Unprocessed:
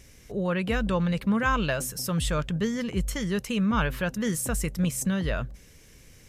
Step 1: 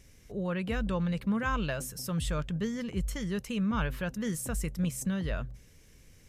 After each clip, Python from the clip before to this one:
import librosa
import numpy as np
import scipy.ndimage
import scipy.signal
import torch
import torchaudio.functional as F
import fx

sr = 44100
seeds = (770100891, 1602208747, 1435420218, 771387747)

y = fx.low_shelf(x, sr, hz=200.0, db=4.5)
y = fx.hum_notches(y, sr, base_hz=60, count=2)
y = y * 10.0 ** (-7.0 / 20.0)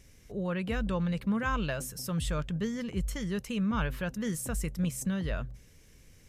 y = x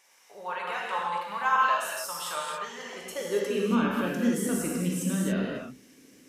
y = fx.filter_sweep_highpass(x, sr, from_hz=890.0, to_hz=270.0, start_s=2.72, end_s=3.77, q=4.0)
y = fx.rev_gated(y, sr, seeds[0], gate_ms=310, shape='flat', drr_db=-3.5)
y = y * 10.0 ** (-1.0 / 20.0)